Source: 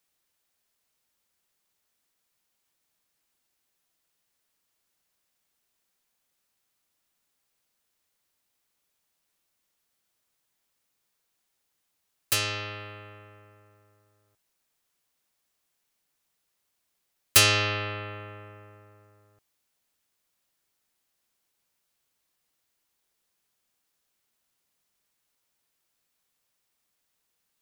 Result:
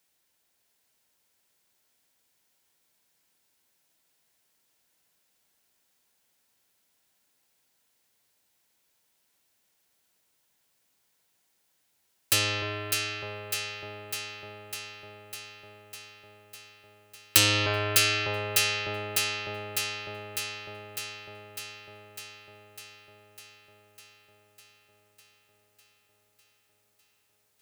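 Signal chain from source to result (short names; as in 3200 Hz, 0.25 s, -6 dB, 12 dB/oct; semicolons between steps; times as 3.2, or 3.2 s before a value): HPF 63 Hz 6 dB/oct; notch 1200 Hz, Q 10; on a send: echo with dull and thin repeats by turns 0.301 s, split 1000 Hz, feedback 83%, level -5 dB; on the sum: core saturation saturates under 3300 Hz; gain +4 dB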